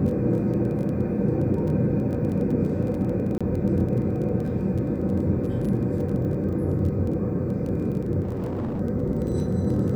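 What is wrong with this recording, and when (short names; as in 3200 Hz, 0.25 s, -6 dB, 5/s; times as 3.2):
crackle 16/s -31 dBFS
3.38–3.41 gap 26 ms
8.22–8.81 clipped -24.5 dBFS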